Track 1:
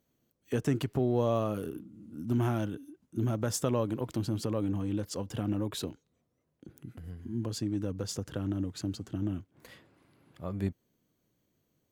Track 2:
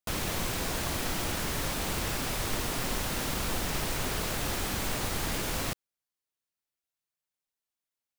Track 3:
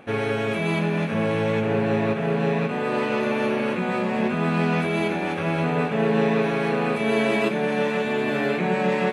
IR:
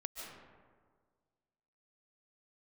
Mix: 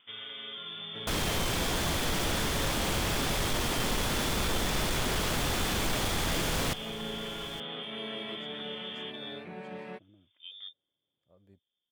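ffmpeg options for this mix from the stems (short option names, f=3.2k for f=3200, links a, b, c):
-filter_complex "[0:a]equalizer=f=530:w=1.8:g=9,volume=-14dB,asplit=2[a][b];[b]volume=-16dB[c];[1:a]highshelf=f=12k:g=-8,asoftclip=type=hard:threshold=-28dB,adelay=1000,volume=3dB,asplit=2[d][e];[e]volume=-16dB[f];[2:a]equalizer=f=7k:w=4.5:g=-12,volume=-16dB,asplit=3[g][h][i];[h]volume=-12dB[j];[i]volume=-4dB[k];[a][g]amix=inputs=2:normalize=0,lowpass=f=3.1k:t=q:w=0.5098,lowpass=f=3.1k:t=q:w=0.6013,lowpass=f=3.1k:t=q:w=0.9,lowpass=f=3.1k:t=q:w=2.563,afreqshift=-3700,alimiter=level_in=9.5dB:limit=-24dB:level=0:latency=1,volume=-9.5dB,volume=0dB[l];[3:a]atrim=start_sample=2205[m];[j][m]afir=irnorm=-1:irlink=0[n];[c][f][k]amix=inputs=3:normalize=0,aecho=0:1:868:1[o];[d][l][n][o]amix=inputs=4:normalize=0"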